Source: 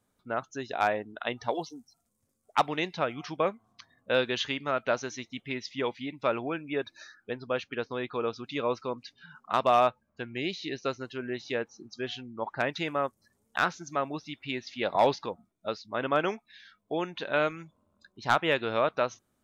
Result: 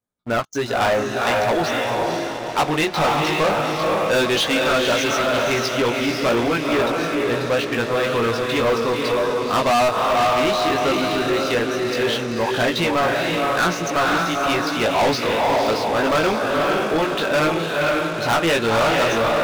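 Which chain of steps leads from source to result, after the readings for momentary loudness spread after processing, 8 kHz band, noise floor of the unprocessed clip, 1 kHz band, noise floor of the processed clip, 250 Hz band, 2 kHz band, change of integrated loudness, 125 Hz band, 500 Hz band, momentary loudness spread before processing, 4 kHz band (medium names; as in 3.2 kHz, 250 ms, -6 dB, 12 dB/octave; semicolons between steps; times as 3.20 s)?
4 LU, no reading, -76 dBFS, +10.5 dB, -27 dBFS, +13.5 dB, +12.5 dB, +11.5 dB, +14.0 dB, +11.5 dB, 12 LU, +14.0 dB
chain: chorus 0.15 Hz, delay 17 ms, depth 2.2 ms; echo that smears into a reverb 496 ms, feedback 42%, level -3.5 dB; waveshaping leveller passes 5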